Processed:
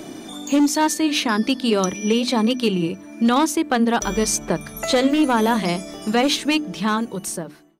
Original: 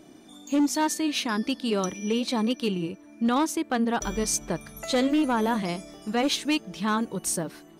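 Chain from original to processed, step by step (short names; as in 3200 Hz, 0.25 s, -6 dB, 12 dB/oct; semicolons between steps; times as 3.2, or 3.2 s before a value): ending faded out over 1.30 s; notches 50/100/150/200/250/300 Hz; three-band squash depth 40%; gain +7 dB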